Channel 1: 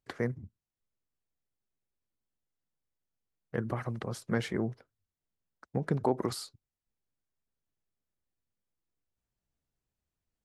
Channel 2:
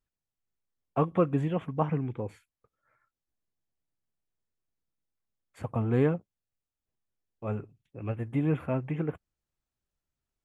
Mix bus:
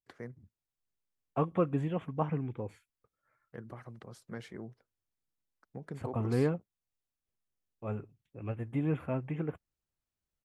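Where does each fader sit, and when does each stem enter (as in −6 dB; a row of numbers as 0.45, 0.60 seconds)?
−12.5, −4.0 decibels; 0.00, 0.40 seconds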